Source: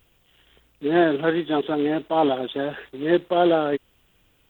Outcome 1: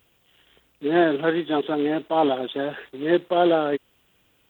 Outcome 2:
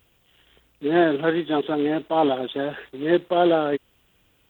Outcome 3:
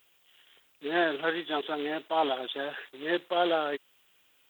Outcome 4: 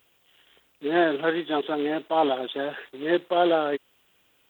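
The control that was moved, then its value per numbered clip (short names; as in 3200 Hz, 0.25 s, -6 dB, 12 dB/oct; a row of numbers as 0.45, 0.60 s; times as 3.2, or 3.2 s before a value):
HPF, cutoff: 130, 40, 1300, 460 Hz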